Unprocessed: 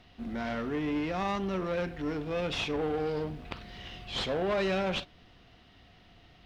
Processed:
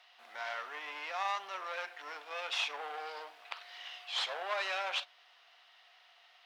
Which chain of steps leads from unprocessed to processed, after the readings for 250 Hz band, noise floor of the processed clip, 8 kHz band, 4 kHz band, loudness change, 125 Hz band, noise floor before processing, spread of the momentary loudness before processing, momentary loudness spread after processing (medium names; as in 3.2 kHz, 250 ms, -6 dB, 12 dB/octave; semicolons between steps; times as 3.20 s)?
-33.0 dB, -63 dBFS, 0.0 dB, 0.0 dB, -5.5 dB, under -40 dB, -59 dBFS, 13 LU, 12 LU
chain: high-pass 770 Hz 24 dB/octave